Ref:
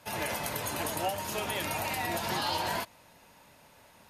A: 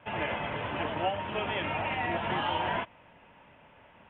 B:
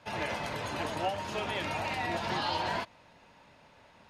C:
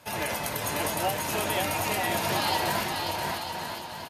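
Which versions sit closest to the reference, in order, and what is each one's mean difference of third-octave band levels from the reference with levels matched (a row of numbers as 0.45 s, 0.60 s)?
B, C, A; 3.5 dB, 6.0 dB, 9.0 dB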